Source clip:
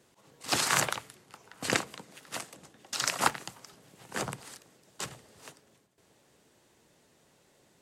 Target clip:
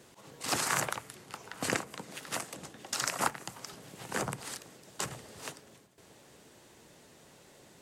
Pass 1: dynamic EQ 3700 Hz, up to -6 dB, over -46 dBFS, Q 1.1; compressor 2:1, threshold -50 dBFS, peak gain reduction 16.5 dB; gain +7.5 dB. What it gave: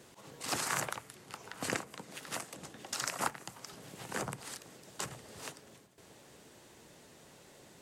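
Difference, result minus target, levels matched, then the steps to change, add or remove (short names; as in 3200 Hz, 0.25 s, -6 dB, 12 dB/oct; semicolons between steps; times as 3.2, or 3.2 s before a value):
compressor: peak gain reduction +4 dB
change: compressor 2:1, threshold -42.5 dBFS, peak gain reduction 12.5 dB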